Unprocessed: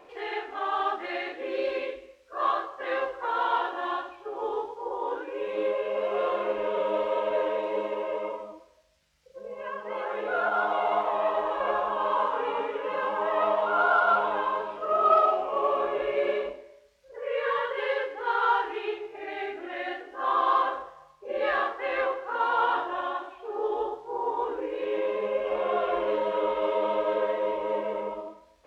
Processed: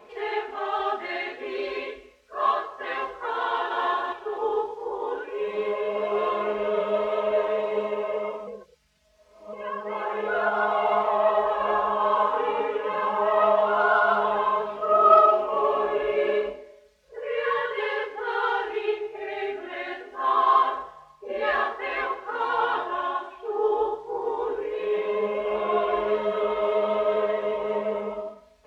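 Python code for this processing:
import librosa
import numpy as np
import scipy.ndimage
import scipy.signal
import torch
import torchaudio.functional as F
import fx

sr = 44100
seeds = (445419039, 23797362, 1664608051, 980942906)

y = fx.echo_throw(x, sr, start_s=3.45, length_s=0.42, ms=250, feedback_pct=30, wet_db=-2.0)
y = fx.edit(y, sr, fx.reverse_span(start_s=8.47, length_s=1.06), tone=tone)
y = scipy.signal.sosfilt(scipy.signal.butter(2, 56.0, 'highpass', fs=sr, output='sos'), y)
y = fx.low_shelf(y, sr, hz=140.0, db=7.0)
y = y + 0.86 * np.pad(y, (int(4.7 * sr / 1000.0), 0))[:len(y)]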